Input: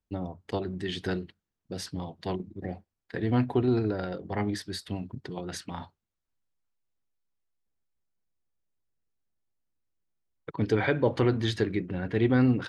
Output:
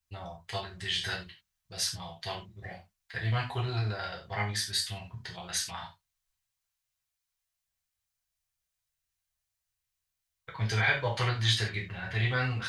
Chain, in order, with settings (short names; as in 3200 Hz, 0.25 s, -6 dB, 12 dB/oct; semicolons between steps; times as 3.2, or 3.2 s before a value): passive tone stack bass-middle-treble 10-0-10; non-linear reverb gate 0.12 s falling, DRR -3.5 dB; gain +5 dB